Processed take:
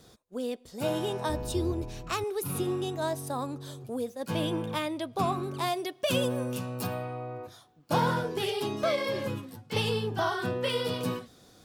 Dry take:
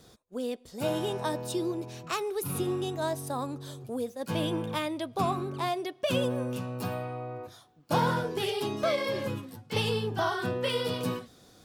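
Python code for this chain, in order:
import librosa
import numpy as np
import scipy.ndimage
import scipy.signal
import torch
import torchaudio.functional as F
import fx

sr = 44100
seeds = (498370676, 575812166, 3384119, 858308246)

y = fx.octave_divider(x, sr, octaves=2, level_db=2.0, at=(1.29, 2.24))
y = fx.high_shelf(y, sr, hz=4400.0, db=7.5, at=(5.43, 6.87))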